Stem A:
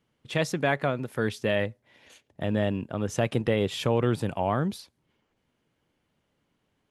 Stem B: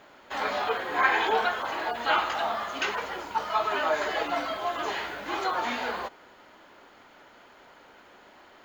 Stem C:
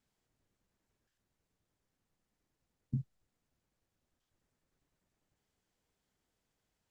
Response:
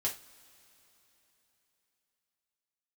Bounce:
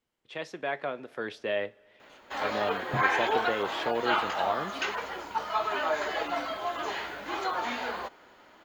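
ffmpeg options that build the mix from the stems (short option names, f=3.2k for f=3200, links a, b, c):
-filter_complex "[0:a]acrossover=split=290 5400:gain=0.126 1 0.141[a][b][c];[a][b][c]amix=inputs=3:normalize=0,volume=-10.5dB,asplit=2[d][e];[e]volume=-12.5dB[f];[1:a]adelay=2000,volume=-7.5dB[g];[2:a]volume=-4.5dB[h];[3:a]atrim=start_sample=2205[i];[f][i]afir=irnorm=-1:irlink=0[j];[d][g][h][j]amix=inputs=4:normalize=0,dynaudnorm=f=140:g=11:m=5dB"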